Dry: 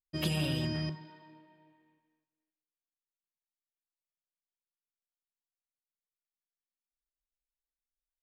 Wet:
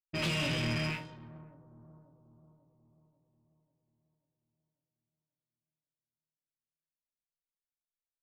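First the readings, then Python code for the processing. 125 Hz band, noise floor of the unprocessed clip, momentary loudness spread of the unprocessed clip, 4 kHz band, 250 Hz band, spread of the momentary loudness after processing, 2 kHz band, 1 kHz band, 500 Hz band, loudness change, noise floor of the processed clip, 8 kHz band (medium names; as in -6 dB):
-1.5 dB, under -85 dBFS, 9 LU, +2.0 dB, -1.5 dB, 19 LU, +7.0 dB, +5.0 dB, +1.5 dB, +0.5 dB, under -85 dBFS, +2.0 dB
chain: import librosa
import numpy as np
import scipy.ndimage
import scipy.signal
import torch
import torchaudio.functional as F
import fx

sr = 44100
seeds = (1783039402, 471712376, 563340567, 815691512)

y = fx.rattle_buzz(x, sr, strikes_db=-42.0, level_db=-30.0)
y = scipy.signal.sosfilt(scipy.signal.butter(6, 8100.0, 'lowpass', fs=sr, output='sos'), y)
y = fx.notch(y, sr, hz=770.0, q=13.0)
y = fx.room_flutter(y, sr, wall_m=3.0, rt60_s=0.23)
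y = fx.dynamic_eq(y, sr, hz=1300.0, q=0.88, threshold_db=-52.0, ratio=4.0, max_db=6)
y = fx.leveller(y, sr, passes=3)
y = fx.env_lowpass(y, sr, base_hz=1300.0, full_db=-26.0)
y = fx.echo_bbd(y, sr, ms=540, stages=4096, feedback_pct=51, wet_db=-18.0)
y = F.gain(torch.from_numpy(y), -9.0).numpy()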